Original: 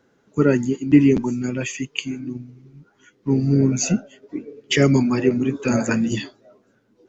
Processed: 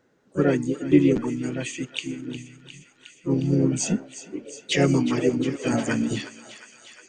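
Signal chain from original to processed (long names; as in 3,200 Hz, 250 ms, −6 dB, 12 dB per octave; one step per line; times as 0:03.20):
feedback echo with a high-pass in the loop 358 ms, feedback 81%, high-pass 910 Hz, level −12.5 dB
pitch-shifted copies added +3 semitones −15 dB, +4 semitones −6 dB
level −5 dB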